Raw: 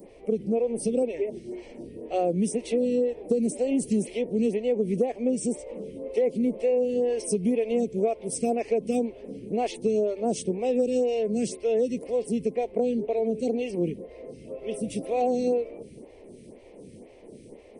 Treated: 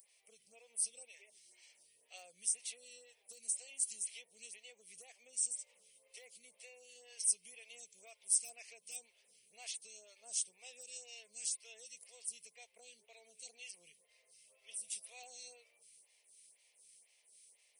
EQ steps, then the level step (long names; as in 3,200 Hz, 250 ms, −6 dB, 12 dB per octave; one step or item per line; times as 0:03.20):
first difference
guitar amp tone stack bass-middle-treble 10-0-10
+1.5 dB